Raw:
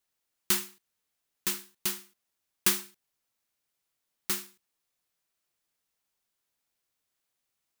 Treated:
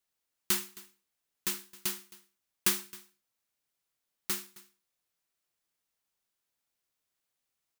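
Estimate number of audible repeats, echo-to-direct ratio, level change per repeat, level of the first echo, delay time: 1, −21.0 dB, repeats not evenly spaced, −21.0 dB, 266 ms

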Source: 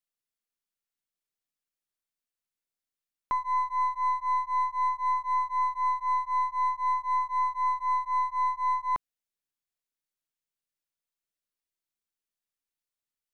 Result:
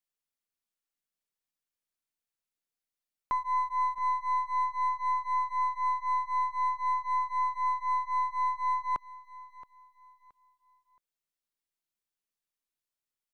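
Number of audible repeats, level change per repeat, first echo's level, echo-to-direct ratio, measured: 2, −10.5 dB, −17.5 dB, −17.0 dB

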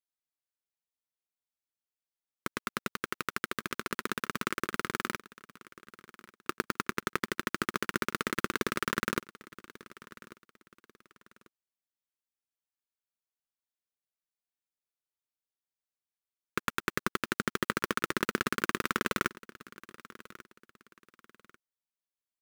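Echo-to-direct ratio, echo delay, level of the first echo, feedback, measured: −19.0 dB, 1,142 ms, −19.5 dB, 30%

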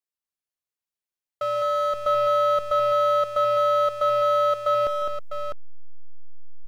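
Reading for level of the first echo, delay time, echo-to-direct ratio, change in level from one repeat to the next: −12.5 dB, 150 ms, −1.5 dB, repeats not evenly spaced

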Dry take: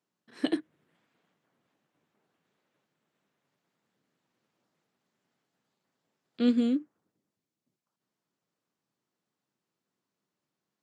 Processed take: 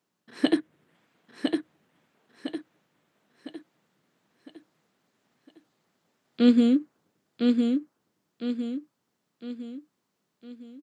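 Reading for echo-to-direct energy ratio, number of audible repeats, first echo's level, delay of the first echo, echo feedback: −3.0 dB, 5, −4.0 dB, 1,007 ms, 43%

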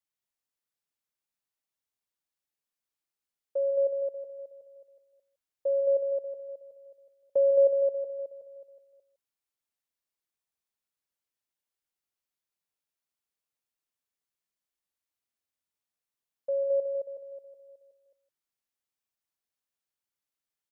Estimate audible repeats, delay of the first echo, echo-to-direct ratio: 3, 149 ms, −3.0 dB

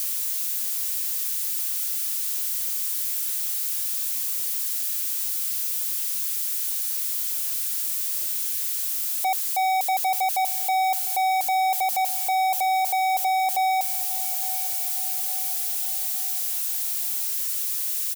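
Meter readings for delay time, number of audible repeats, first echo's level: 860 ms, 4, −17.0 dB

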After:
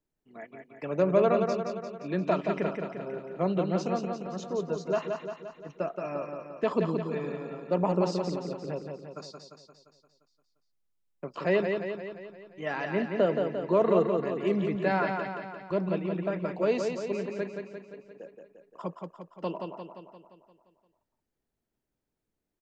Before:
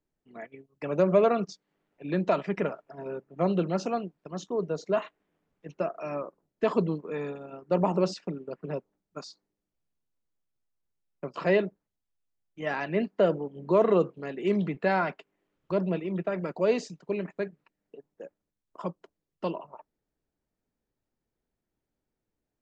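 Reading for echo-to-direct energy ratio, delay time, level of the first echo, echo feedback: −3.5 dB, 174 ms, −5.0 dB, 57%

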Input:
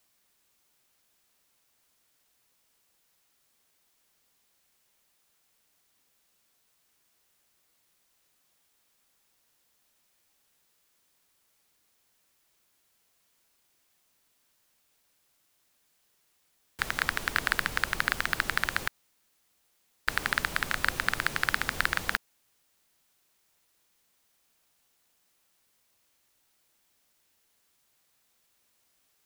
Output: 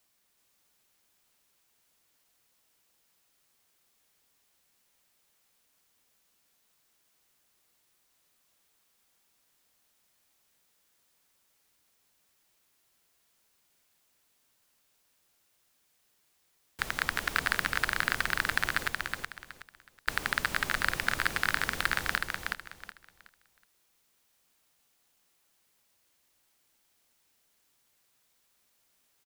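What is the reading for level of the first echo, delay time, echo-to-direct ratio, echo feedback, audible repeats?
−4.0 dB, 371 ms, −3.5 dB, 26%, 3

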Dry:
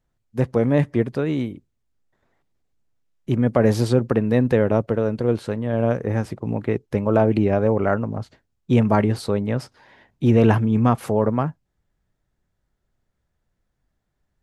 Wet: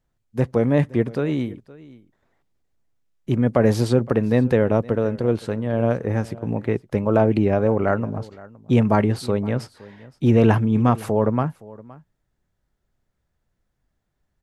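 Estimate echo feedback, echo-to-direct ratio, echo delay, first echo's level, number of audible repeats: repeats not evenly spaced, −21.0 dB, 517 ms, −21.0 dB, 1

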